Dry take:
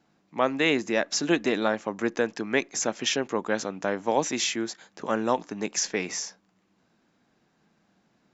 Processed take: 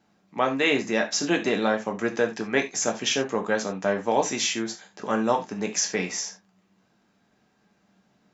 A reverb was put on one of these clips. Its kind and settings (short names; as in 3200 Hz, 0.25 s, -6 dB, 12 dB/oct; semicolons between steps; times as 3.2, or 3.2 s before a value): non-linear reverb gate 0.11 s falling, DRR 3 dB